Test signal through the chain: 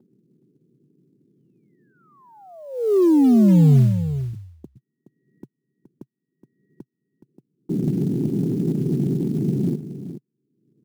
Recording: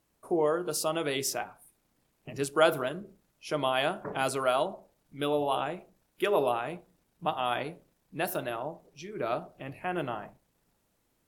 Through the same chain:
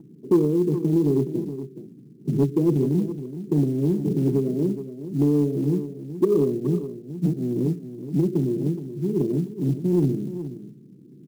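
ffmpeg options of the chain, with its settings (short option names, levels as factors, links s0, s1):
-filter_complex "[0:a]asuperpass=centerf=230:order=12:qfactor=0.84,asplit=2[s0][s1];[s1]acompressor=threshold=0.01:ratio=10,volume=1.41[s2];[s0][s2]amix=inputs=2:normalize=0,aemphasis=mode=reproduction:type=bsi,acompressor=mode=upward:threshold=0.00562:ratio=2.5,crystalizer=i=4:c=0,asoftclip=type=tanh:threshold=0.126,acrusher=bits=8:mode=log:mix=0:aa=0.000001,aecho=1:1:421:0.266,volume=2.66"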